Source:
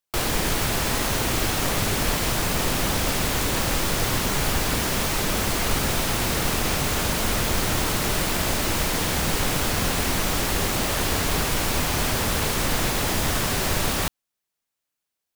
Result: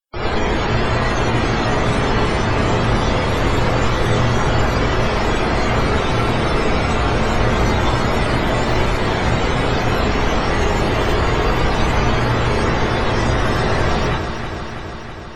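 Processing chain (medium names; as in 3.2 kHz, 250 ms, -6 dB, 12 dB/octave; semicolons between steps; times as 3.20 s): loudest bins only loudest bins 64; echo whose repeats swap between lows and highs 163 ms, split 1.3 kHz, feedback 84%, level -6.5 dB; gated-style reverb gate 120 ms rising, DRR -7.5 dB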